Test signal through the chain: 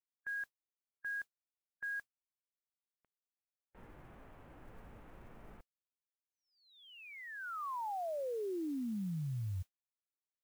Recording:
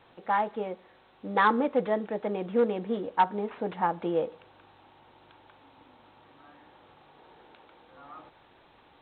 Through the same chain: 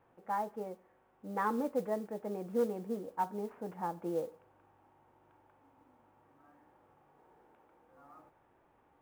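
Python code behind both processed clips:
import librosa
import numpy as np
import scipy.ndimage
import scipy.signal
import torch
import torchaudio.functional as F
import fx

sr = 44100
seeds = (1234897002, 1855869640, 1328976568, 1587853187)

y = scipy.ndimage.gaussian_filter1d(x, 4.2, mode='constant')
y = fx.hpss(y, sr, part='percussive', gain_db=-5)
y = fx.mod_noise(y, sr, seeds[0], snr_db=26)
y = y * librosa.db_to_amplitude(-6.5)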